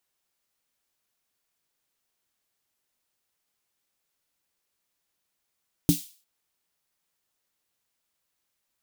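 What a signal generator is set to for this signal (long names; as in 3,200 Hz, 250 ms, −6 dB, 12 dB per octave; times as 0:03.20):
synth snare length 0.35 s, tones 170 Hz, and 290 Hz, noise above 3,100 Hz, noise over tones −11 dB, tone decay 0.14 s, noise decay 0.42 s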